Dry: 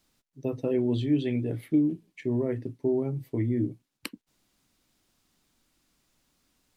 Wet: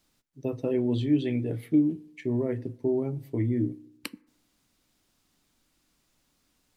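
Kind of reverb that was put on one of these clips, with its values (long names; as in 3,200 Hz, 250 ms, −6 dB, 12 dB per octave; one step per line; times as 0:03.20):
feedback delay network reverb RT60 0.84 s, low-frequency decay 1×, high-frequency decay 0.4×, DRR 18.5 dB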